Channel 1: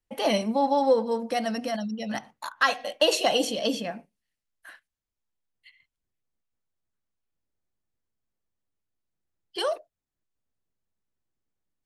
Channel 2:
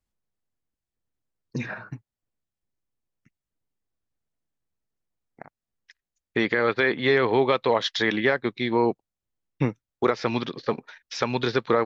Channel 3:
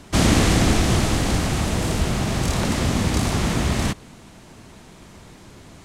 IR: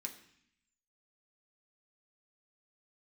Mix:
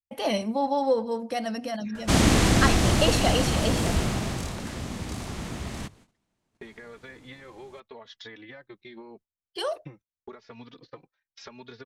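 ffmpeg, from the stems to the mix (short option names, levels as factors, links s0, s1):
-filter_complex "[0:a]equalizer=f=82:t=o:w=0.77:g=14,volume=0.75[s0];[1:a]acompressor=threshold=0.0398:ratio=10,asplit=2[s1][s2];[s2]adelay=3.4,afreqshift=0.83[s3];[s1][s3]amix=inputs=2:normalize=1,adelay=250,volume=0.335[s4];[2:a]bandreject=f=50:t=h:w=6,bandreject=f=100:t=h:w=6,bandreject=f=150:t=h:w=6,adelay=1950,volume=0.75,afade=t=out:st=3.99:d=0.56:silence=0.298538[s5];[s0][s4][s5]amix=inputs=3:normalize=0,agate=range=0.1:threshold=0.00224:ratio=16:detection=peak"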